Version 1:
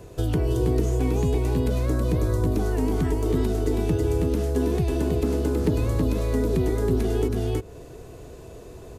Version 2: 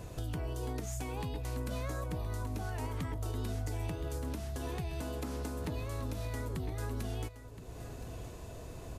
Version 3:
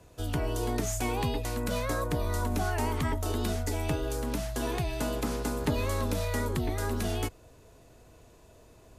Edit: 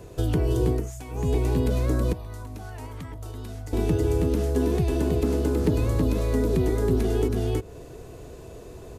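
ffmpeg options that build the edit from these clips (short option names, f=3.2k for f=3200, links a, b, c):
-filter_complex "[1:a]asplit=2[a][b];[0:a]asplit=3[c][d][e];[c]atrim=end=0.92[f];[a]atrim=start=0.68:end=1.32[g];[d]atrim=start=1.08:end=2.132[h];[b]atrim=start=2.128:end=3.732[i];[e]atrim=start=3.728[j];[f][g]acrossfade=d=0.24:c1=tri:c2=tri[k];[k][h]acrossfade=d=0.24:c1=tri:c2=tri[l];[l][i]acrossfade=d=0.004:c1=hsin:c2=hsin[m];[m][j]acrossfade=d=0.004:c1=hsin:c2=hsin"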